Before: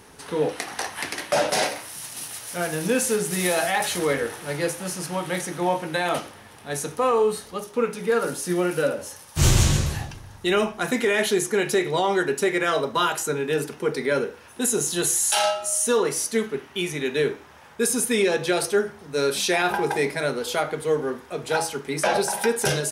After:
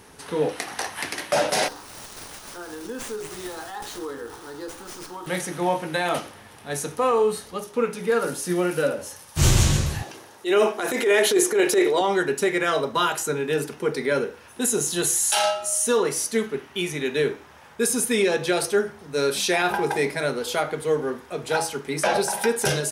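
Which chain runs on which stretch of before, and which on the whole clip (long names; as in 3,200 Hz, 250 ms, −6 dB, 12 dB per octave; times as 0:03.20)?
0:01.68–0:05.27: downward compressor 2 to 1, threshold −31 dBFS + phaser with its sweep stopped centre 610 Hz, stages 6 + windowed peak hold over 3 samples
0:10.03–0:12.01: high-pass with resonance 380 Hz, resonance Q 1.9 + high-shelf EQ 8,500 Hz +2.5 dB + transient designer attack −9 dB, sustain +5 dB
whole clip: no processing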